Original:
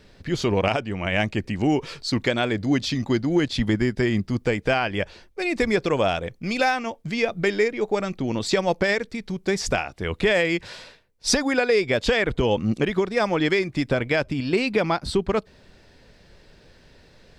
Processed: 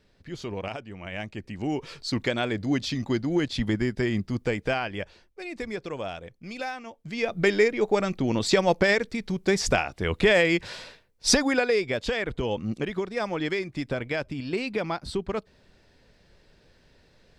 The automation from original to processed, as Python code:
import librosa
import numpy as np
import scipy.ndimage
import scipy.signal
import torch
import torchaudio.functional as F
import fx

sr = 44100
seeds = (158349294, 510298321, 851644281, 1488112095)

y = fx.gain(x, sr, db=fx.line((1.29, -12.0), (2.07, -4.0), (4.61, -4.0), (5.49, -12.0), (6.93, -12.0), (7.43, 0.5), (11.34, 0.5), (12.03, -7.0)))